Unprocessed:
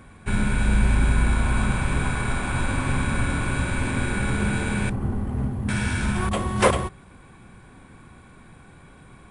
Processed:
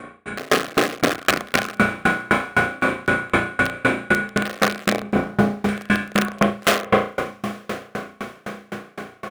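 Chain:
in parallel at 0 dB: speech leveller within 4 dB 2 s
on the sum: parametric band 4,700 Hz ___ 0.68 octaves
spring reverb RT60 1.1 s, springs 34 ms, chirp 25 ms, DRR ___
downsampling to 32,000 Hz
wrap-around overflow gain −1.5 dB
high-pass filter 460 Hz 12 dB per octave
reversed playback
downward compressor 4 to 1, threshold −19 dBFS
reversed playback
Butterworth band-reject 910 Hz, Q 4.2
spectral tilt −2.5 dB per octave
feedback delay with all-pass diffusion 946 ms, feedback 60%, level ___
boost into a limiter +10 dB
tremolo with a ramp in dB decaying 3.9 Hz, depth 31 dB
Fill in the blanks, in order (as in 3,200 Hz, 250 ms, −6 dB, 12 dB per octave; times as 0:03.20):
−2.5 dB, −8 dB, −14 dB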